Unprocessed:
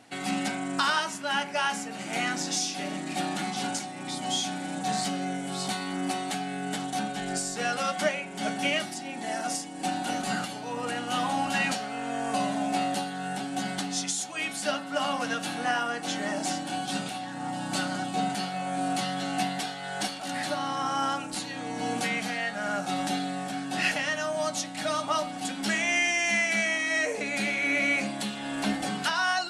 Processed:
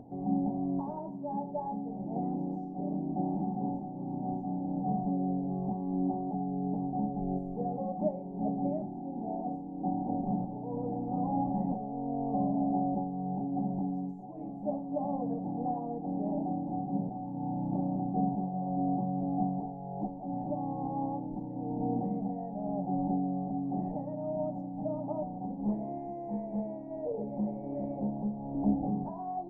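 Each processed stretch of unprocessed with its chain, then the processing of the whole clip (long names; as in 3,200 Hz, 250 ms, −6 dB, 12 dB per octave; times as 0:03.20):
0:25.23–0:28.55: notch filter 290 Hz, Q 6.6 + highs frequency-modulated by the lows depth 0.34 ms
whole clip: elliptic low-pass filter 870 Hz, stop band 40 dB; spectral tilt −4 dB per octave; upward compression, threshold −37 dBFS; level −6 dB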